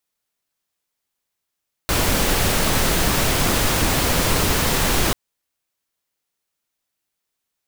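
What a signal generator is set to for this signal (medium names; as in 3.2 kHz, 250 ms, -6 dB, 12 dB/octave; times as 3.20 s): noise pink, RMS -18.5 dBFS 3.24 s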